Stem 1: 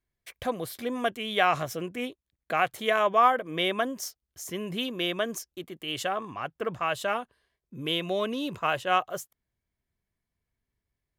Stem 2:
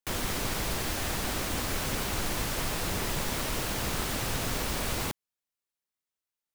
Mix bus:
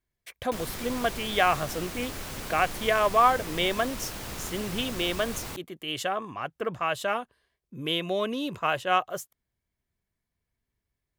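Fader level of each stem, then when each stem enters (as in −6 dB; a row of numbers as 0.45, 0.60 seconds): +0.5, −6.0 decibels; 0.00, 0.45 seconds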